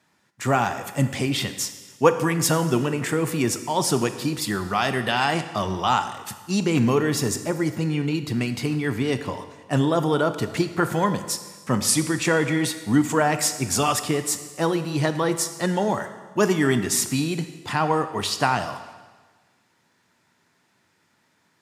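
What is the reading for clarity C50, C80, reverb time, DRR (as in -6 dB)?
11.0 dB, 12.5 dB, 1.4 s, 9.5 dB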